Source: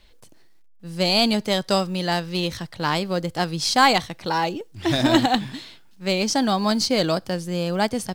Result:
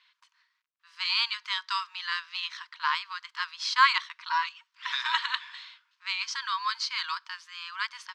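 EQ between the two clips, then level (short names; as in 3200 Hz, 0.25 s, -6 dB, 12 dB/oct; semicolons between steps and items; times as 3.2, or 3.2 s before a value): brick-wall FIR high-pass 920 Hz; air absorption 190 m; 0.0 dB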